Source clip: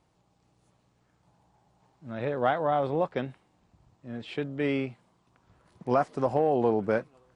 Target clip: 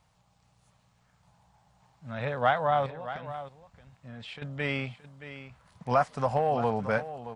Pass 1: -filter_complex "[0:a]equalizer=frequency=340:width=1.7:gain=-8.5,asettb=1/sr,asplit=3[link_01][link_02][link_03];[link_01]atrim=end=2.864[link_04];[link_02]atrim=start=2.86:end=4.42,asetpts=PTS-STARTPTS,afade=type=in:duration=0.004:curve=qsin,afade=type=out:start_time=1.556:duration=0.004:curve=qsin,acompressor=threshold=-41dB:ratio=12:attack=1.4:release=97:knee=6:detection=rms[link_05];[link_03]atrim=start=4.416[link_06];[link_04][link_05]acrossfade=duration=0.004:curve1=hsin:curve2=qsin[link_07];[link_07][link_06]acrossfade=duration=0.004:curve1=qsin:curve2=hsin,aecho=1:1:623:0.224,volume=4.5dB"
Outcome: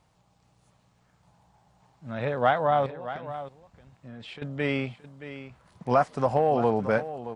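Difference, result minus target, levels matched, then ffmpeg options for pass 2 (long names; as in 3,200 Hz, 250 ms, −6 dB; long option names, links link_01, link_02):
250 Hz band +2.5 dB
-filter_complex "[0:a]equalizer=frequency=340:width=1.7:gain=-19.5,asettb=1/sr,asplit=3[link_01][link_02][link_03];[link_01]atrim=end=2.864[link_04];[link_02]atrim=start=2.86:end=4.42,asetpts=PTS-STARTPTS,afade=type=in:duration=0.004:curve=qsin,afade=type=out:start_time=1.556:duration=0.004:curve=qsin,acompressor=threshold=-41dB:ratio=12:attack=1.4:release=97:knee=6:detection=rms[link_05];[link_03]atrim=start=4.416[link_06];[link_04][link_05]acrossfade=duration=0.004:curve1=hsin:curve2=qsin[link_07];[link_07][link_06]acrossfade=duration=0.004:curve1=qsin:curve2=hsin,aecho=1:1:623:0.224,volume=4.5dB"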